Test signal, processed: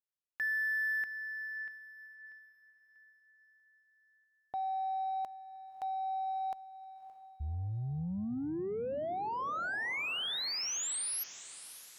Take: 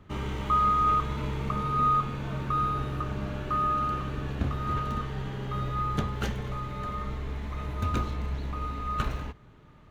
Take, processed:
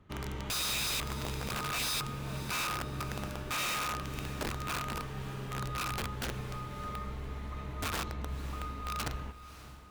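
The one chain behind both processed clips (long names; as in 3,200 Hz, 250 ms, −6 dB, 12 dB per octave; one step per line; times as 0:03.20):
wrap-around overflow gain 23 dB
harmonic generator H 2 −44 dB, 5 −35 dB, 7 −29 dB, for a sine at −23 dBFS
feedback delay with all-pass diffusion 587 ms, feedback 45%, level −14 dB
level −6 dB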